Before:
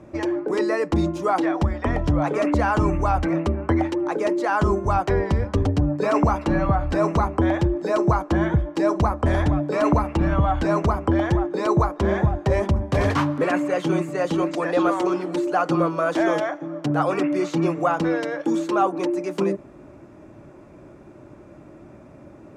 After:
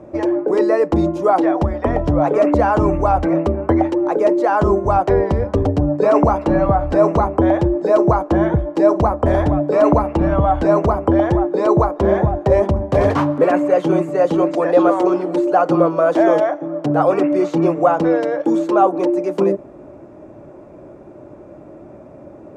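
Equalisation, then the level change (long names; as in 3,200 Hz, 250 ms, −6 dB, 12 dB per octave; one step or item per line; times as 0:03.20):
low-shelf EQ 440 Hz +4.5 dB
parametric band 590 Hz +11 dB 1.8 octaves
−3.0 dB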